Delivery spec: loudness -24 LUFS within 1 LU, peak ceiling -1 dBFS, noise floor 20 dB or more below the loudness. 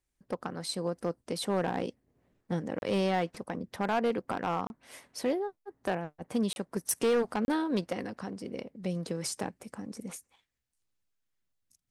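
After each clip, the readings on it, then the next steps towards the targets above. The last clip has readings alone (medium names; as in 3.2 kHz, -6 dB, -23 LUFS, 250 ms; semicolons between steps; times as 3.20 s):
clipped samples 0.9%; clipping level -22.0 dBFS; dropouts 4; longest dropout 31 ms; loudness -33.5 LUFS; peak level -22.0 dBFS; loudness target -24.0 LUFS
-> clip repair -22 dBFS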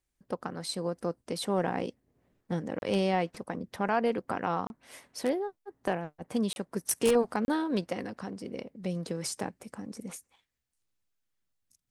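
clipped samples 0.0%; dropouts 4; longest dropout 31 ms
-> interpolate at 2.79/4.67/6.53/7.45 s, 31 ms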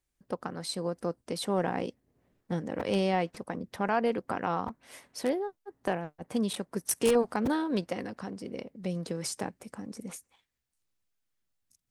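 dropouts 0; loudness -32.5 LUFS; peak level -13.0 dBFS; loudness target -24.0 LUFS
-> trim +8.5 dB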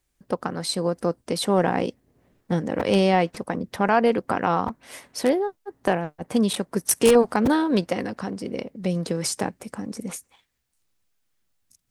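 loudness -24.0 LUFS; peak level -4.5 dBFS; noise floor -73 dBFS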